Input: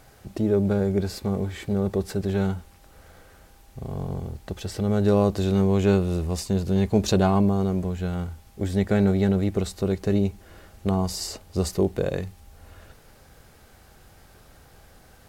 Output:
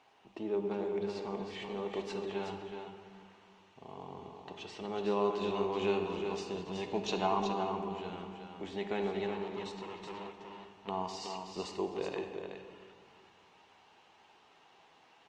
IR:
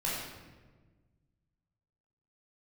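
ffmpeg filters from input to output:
-filter_complex "[0:a]asettb=1/sr,asplit=3[link_01][link_02][link_03];[link_01]atrim=end=1.624[link_04];[link_02]atrim=start=1.62:end=2.23,asetpts=PTS-STARTPTS,afade=type=in:duration=0.004:curve=qsin,afade=type=out:start_time=0.606:duration=0.004:curve=qsin,highshelf=frequency=2000:gain=5[link_05];[link_03]atrim=start=2.226[link_06];[link_04][link_05]acrossfade=duration=0.004:curve1=hsin:curve2=qsin[link_07];[link_07][link_06]acrossfade=duration=0.004:curve1=qsin:curve2=hsin,asplit=3[link_08][link_09][link_10];[link_08]afade=type=out:start_time=9.26:duration=0.02[link_11];[link_09]volume=30dB,asoftclip=hard,volume=-30dB,afade=type=in:start_time=9.26:duration=0.02,afade=type=out:start_time=10.87:duration=0.02[link_12];[link_10]afade=type=in:start_time=10.87:duration=0.02[link_13];[link_11][link_12][link_13]amix=inputs=3:normalize=0,highpass=380,equalizer=frequency=550:width_type=q:width=4:gain=-9,equalizer=frequency=940:width_type=q:width=4:gain=9,equalizer=frequency=1500:width_type=q:width=4:gain=-7,equalizer=frequency=2800:width_type=q:width=4:gain=8,equalizer=frequency=4900:width_type=q:width=4:gain=-6,lowpass=frequency=5500:width=0.5412,lowpass=frequency=5500:width=1.3066,aecho=1:1:372:0.473,asplit=2[link_14][link_15];[1:a]atrim=start_sample=2205,asetrate=26901,aresample=44100,adelay=12[link_16];[link_15][link_16]afir=irnorm=-1:irlink=0,volume=-15.5dB[link_17];[link_14][link_17]amix=inputs=2:normalize=0,volume=-8dB" -ar 48000 -c:a libopus -b:a 32k

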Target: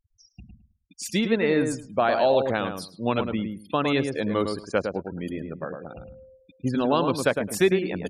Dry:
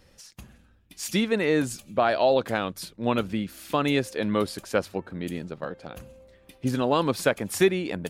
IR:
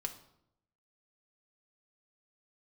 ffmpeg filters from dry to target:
-filter_complex "[0:a]afftfilt=real='re*gte(hypot(re,im),0.0141)':imag='im*gte(hypot(re,im),0.0141)':win_size=1024:overlap=0.75,asplit=2[link_01][link_02];[link_02]adelay=107,lowpass=frequency=1400:poles=1,volume=-5dB,asplit=2[link_03][link_04];[link_04]adelay=107,lowpass=frequency=1400:poles=1,volume=0.19,asplit=2[link_05][link_06];[link_06]adelay=107,lowpass=frequency=1400:poles=1,volume=0.19[link_07];[link_01][link_03][link_05][link_07]amix=inputs=4:normalize=0"

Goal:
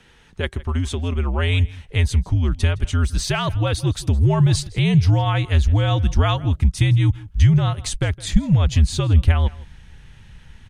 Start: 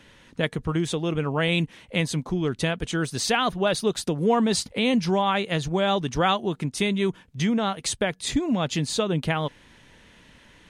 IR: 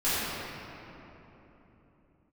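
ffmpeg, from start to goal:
-filter_complex "[0:a]asplit=2[link_01][link_02];[link_02]adelay=163.3,volume=-20dB,highshelf=frequency=4000:gain=-3.67[link_03];[link_01][link_03]amix=inputs=2:normalize=0,afreqshift=-77,asubboost=boost=6.5:cutoff=140"

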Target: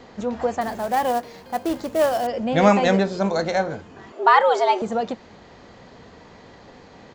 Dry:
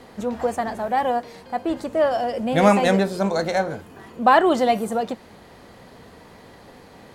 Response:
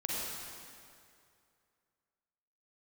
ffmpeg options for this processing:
-filter_complex "[0:a]aresample=16000,aresample=44100,asettb=1/sr,asplit=3[link_01][link_02][link_03];[link_01]atrim=end=0.614[link_04];[link_02]atrim=start=0.61:end=2.27,asetpts=PTS-STARTPTS,afade=type=in:duration=0.004:curve=qsin,afade=type=out:start_time=1.656:duration=0.004:curve=qsin,acrusher=bits=4:mode=log:mix=0:aa=0.000001[link_05];[link_03]atrim=start=2.266[link_06];[link_04][link_05]acrossfade=duration=0.004:curve1=hsin:curve2=qsin[link_07];[link_07][link_06]acrossfade=duration=0.004:curve1=qsin:curve2=hsin,asettb=1/sr,asplit=3[link_08][link_09][link_10];[link_08]atrim=end=4.124[link_11];[link_09]atrim=start=4.12:end=4.82,asetpts=PTS-STARTPTS,afade=type=in:duration=0.004:curve=qsin,afade=type=out:start_time=0.696:duration=0.004:curve=qsin,afreqshift=170[link_12];[link_10]atrim=start=4.816[link_13];[link_11][link_12]acrossfade=duration=0.004:curve1=hsin:curve2=qsin[link_14];[link_14][link_13]acrossfade=duration=0.004:curve1=qsin:curve2=hsin"

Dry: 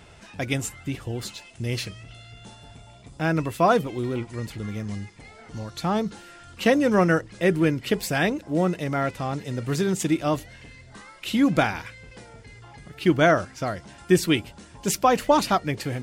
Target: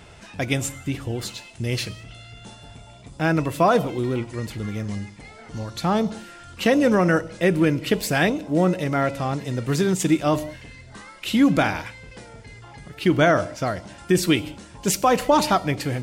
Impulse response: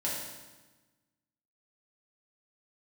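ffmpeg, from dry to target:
-filter_complex "[0:a]asplit=2[link_01][link_02];[link_02]asuperstop=centerf=1700:order=4:qfactor=2[link_03];[1:a]atrim=start_sample=2205,afade=type=out:start_time=0.24:duration=0.01,atrim=end_sample=11025,adelay=22[link_04];[link_03][link_04]afir=irnorm=-1:irlink=0,volume=-20dB[link_05];[link_01][link_05]amix=inputs=2:normalize=0,alimiter=level_in=10dB:limit=-1dB:release=50:level=0:latency=1,volume=-7dB"

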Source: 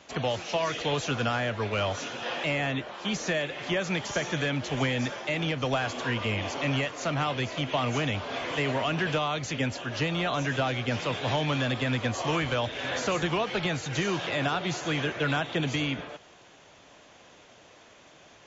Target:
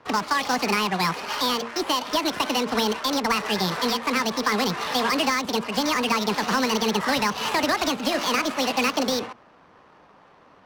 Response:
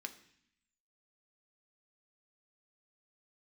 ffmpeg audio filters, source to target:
-filter_complex "[0:a]bandreject=frequency=67.11:width_type=h:width=4,bandreject=frequency=134.22:width_type=h:width=4,bandreject=frequency=201.33:width_type=h:width=4,bandreject=frequency=268.44:width_type=h:width=4,bandreject=frequency=335.55:width_type=h:width=4,bandreject=frequency=402.66:width_type=h:width=4,acrossover=split=160[link_01][link_02];[link_02]adynamicsmooth=sensitivity=5.5:basefreq=720[link_03];[link_01][link_03]amix=inputs=2:normalize=0,asetrate=76440,aresample=44100,volume=5.5dB"

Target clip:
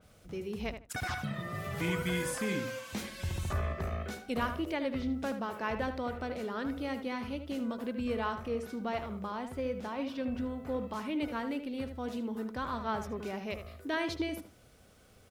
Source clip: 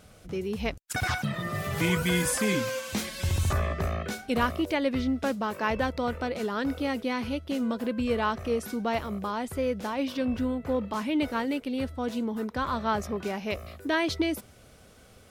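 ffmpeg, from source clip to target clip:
ffmpeg -i in.wav -filter_complex "[0:a]asettb=1/sr,asplit=3[link_01][link_02][link_03];[link_01]atrim=end=8.484[link_04];[link_02]atrim=start=8.48:end=10.6,asetpts=PTS-STARTPTS,afade=type=in:duration=0.004:curve=qsin,afade=type=out:start_time=2.116:duration=0.004:curve=qsin,highshelf=frequency=8900:gain=-10.5[link_05];[link_03]atrim=start=10.596[link_06];[link_04][link_05]acrossfade=duration=0.004:curve1=hsin:curve2=qsin[link_07];[link_07][link_06]acrossfade=duration=0.004:curve1=qsin:curve2=hsin,acrusher=bits=10:mix=0:aa=0.000001,asplit=2[link_08][link_09];[link_09]adelay=77,lowpass=frequency=2700:poles=1,volume=-8dB,asplit=2[link_10][link_11];[link_11]adelay=77,lowpass=frequency=2700:poles=1,volume=0.2,asplit=2[link_12][link_13];[link_13]adelay=77,lowpass=frequency=2700:poles=1,volume=0.2[link_14];[link_08][link_10][link_12][link_14]amix=inputs=4:normalize=0,adynamicequalizer=threshold=0.00794:dfrequency=3400:dqfactor=0.7:tfrequency=3400:tqfactor=0.7:attack=5:release=100:ratio=0.375:range=2:mode=cutabove:tftype=highshelf,volume=-7dB" out.wav

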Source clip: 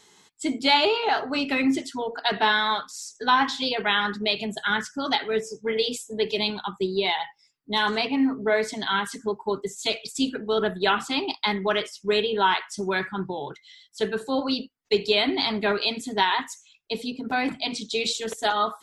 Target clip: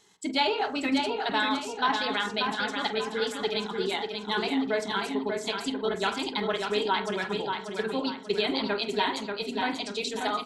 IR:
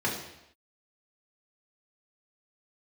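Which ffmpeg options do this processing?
-filter_complex "[0:a]asplit=2[link_01][link_02];[link_02]adelay=86,lowpass=frequency=1600:poles=1,volume=-9dB,asplit=2[link_03][link_04];[link_04]adelay=86,lowpass=frequency=1600:poles=1,volume=0.49,asplit=2[link_05][link_06];[link_06]adelay=86,lowpass=frequency=1600:poles=1,volume=0.49,asplit=2[link_07][link_08];[link_08]adelay=86,lowpass=frequency=1600:poles=1,volume=0.49,asplit=2[link_09][link_10];[link_10]adelay=86,lowpass=frequency=1600:poles=1,volume=0.49,asplit=2[link_11][link_12];[link_12]adelay=86,lowpass=frequency=1600:poles=1,volume=0.49[link_13];[link_03][link_05][link_07][link_09][link_11][link_13]amix=inputs=6:normalize=0[link_14];[link_01][link_14]amix=inputs=2:normalize=0,atempo=1.8,asplit=2[link_15][link_16];[link_16]aecho=0:1:587|1174|1761|2348|2935:0.562|0.247|0.109|0.0479|0.0211[link_17];[link_15][link_17]amix=inputs=2:normalize=0,volume=-5dB"

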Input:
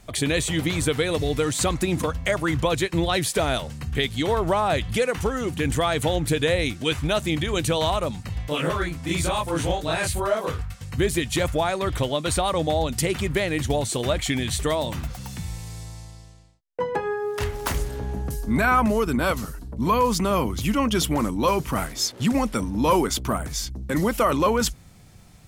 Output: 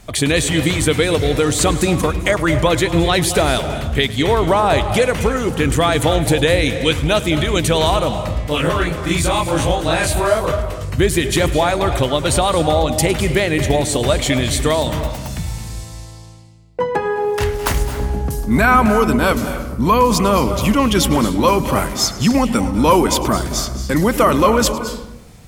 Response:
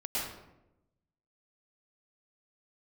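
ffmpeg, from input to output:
-filter_complex "[0:a]asplit=2[link_01][link_02];[1:a]atrim=start_sample=2205,adelay=105[link_03];[link_02][link_03]afir=irnorm=-1:irlink=0,volume=-14dB[link_04];[link_01][link_04]amix=inputs=2:normalize=0,volume=7dB"

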